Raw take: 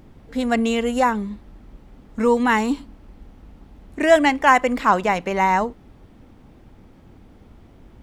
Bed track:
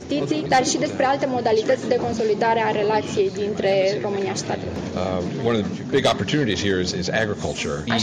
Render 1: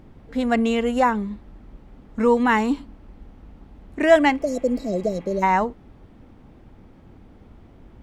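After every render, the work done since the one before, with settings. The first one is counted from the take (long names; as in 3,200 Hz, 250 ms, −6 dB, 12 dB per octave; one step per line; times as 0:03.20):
0:04.43–0:05.40: healed spectral selection 700–3,800 Hz before
high-shelf EQ 4,300 Hz −8 dB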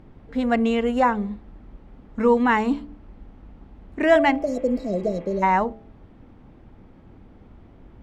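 high-shelf EQ 5,800 Hz −11.5 dB
hum removal 73.22 Hz, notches 11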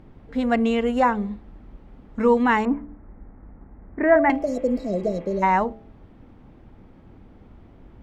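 0:02.65–0:04.30: Butterworth low-pass 2,100 Hz 48 dB per octave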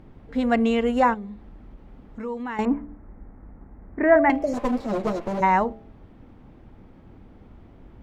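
0:01.14–0:02.59: downward compressor 2 to 1, threshold −39 dBFS
0:04.53–0:05.41: lower of the sound and its delayed copy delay 8.8 ms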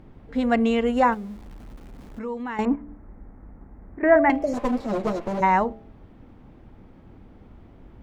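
0:01.12–0:02.19: converter with a step at zero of −45 dBFS
0:02.75–0:04.03: downward compressor 4 to 1, threshold −35 dBFS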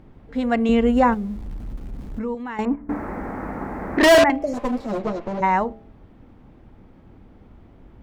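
0:00.69–0:02.35: low-shelf EQ 280 Hz +11 dB
0:02.89–0:04.24: mid-hump overdrive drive 35 dB, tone 6,600 Hz, clips at −6.5 dBFS
0:04.99–0:05.44: high-frequency loss of the air 73 metres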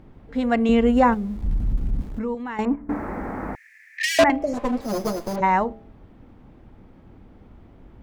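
0:01.43–0:02.02: bass and treble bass +10 dB, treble 0 dB
0:03.55–0:04.19: Chebyshev high-pass with heavy ripple 1,700 Hz, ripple 6 dB
0:04.81–0:05.36: sample-rate reduction 5,600 Hz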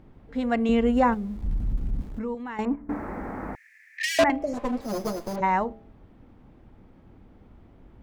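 level −4 dB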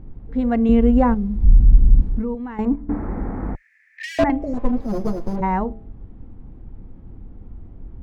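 spectral tilt −3.5 dB per octave
notch filter 600 Hz, Q 12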